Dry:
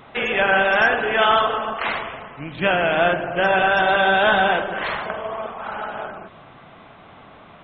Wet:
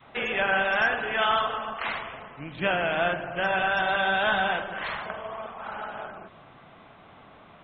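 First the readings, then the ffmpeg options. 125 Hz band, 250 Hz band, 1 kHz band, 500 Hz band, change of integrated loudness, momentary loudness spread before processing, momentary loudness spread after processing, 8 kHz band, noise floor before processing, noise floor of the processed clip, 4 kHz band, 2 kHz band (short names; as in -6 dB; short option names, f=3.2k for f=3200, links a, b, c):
-7.0 dB, -8.0 dB, -7.5 dB, -9.0 dB, -7.0 dB, 14 LU, 14 LU, n/a, -46 dBFS, -52 dBFS, -6.0 dB, -6.5 dB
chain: -af "adynamicequalizer=threshold=0.0178:dfrequency=400:dqfactor=0.95:tfrequency=400:tqfactor=0.95:attack=5:release=100:ratio=0.375:range=3:mode=cutabove:tftype=bell,volume=-6dB"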